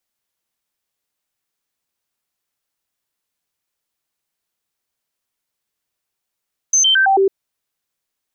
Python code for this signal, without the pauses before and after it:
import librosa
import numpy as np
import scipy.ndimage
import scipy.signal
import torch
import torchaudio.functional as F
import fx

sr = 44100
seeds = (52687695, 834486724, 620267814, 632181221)

y = fx.stepped_sweep(sr, from_hz=6220.0, direction='down', per_octave=1, tones=5, dwell_s=0.11, gap_s=0.0, level_db=-10.0)